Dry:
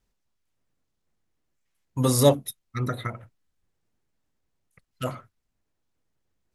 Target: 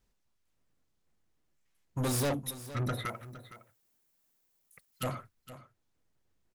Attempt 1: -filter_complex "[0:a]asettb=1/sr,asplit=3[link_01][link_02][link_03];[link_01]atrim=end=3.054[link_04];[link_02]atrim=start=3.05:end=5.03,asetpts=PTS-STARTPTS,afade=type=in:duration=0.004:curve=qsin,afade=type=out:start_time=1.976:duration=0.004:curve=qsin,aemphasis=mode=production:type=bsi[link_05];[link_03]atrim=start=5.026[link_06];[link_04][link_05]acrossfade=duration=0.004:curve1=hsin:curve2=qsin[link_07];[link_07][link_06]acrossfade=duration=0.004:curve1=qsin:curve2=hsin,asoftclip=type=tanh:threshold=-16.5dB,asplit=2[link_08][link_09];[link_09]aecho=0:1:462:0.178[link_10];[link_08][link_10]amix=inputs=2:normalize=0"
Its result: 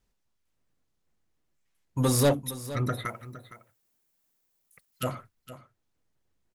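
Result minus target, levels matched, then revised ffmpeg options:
soft clipping: distortion −7 dB
-filter_complex "[0:a]asettb=1/sr,asplit=3[link_01][link_02][link_03];[link_01]atrim=end=3.054[link_04];[link_02]atrim=start=3.05:end=5.03,asetpts=PTS-STARTPTS,afade=type=in:duration=0.004:curve=qsin,afade=type=out:start_time=1.976:duration=0.004:curve=qsin,aemphasis=mode=production:type=bsi[link_05];[link_03]atrim=start=5.026[link_06];[link_04][link_05]acrossfade=duration=0.004:curve1=hsin:curve2=qsin[link_07];[link_07][link_06]acrossfade=duration=0.004:curve1=qsin:curve2=hsin,asoftclip=type=tanh:threshold=-28dB,asplit=2[link_08][link_09];[link_09]aecho=0:1:462:0.178[link_10];[link_08][link_10]amix=inputs=2:normalize=0"

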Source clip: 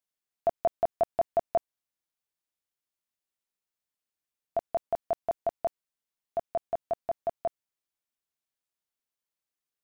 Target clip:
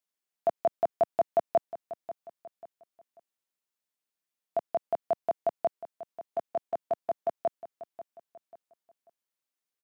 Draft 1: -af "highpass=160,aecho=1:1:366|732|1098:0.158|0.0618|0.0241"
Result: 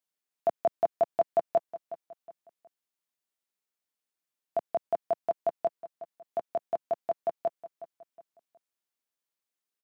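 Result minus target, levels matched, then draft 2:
echo 174 ms early
-af "highpass=160,aecho=1:1:540|1080|1620:0.158|0.0618|0.0241"

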